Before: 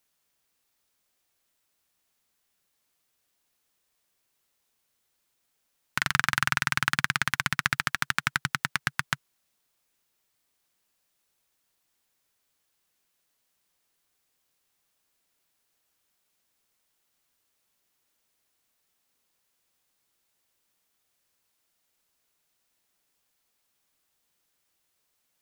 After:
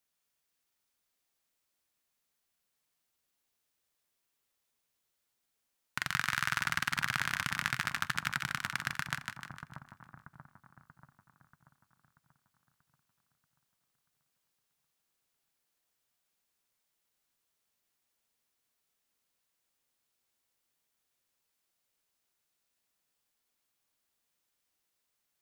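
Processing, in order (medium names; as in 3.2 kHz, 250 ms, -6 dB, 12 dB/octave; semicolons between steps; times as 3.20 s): two-band feedback delay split 1.1 kHz, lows 635 ms, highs 152 ms, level -4.5 dB; on a send at -19.5 dB: reverberation RT60 0.40 s, pre-delay 4 ms; on the sum: trim -8 dB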